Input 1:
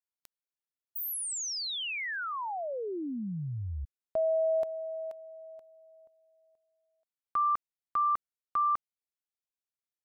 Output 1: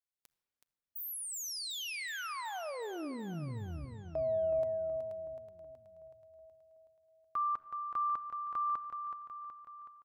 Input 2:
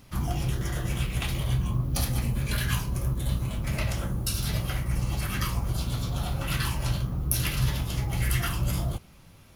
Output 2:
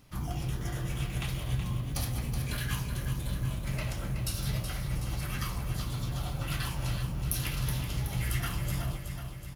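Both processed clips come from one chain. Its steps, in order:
repeating echo 373 ms, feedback 58%, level −8 dB
rectangular room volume 3,100 cubic metres, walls mixed, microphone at 0.45 metres
level −6 dB

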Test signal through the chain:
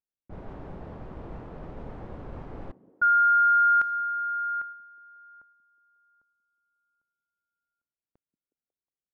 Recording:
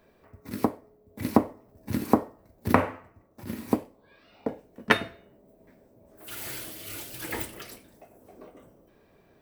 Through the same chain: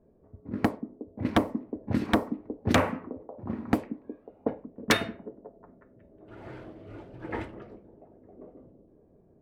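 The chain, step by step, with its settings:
echo through a band-pass that steps 182 ms, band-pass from 220 Hz, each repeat 0.7 octaves, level −12 dB
low-pass that shuts in the quiet parts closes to 430 Hz, open at −20.5 dBFS
wave folding −14 dBFS
level +2 dB

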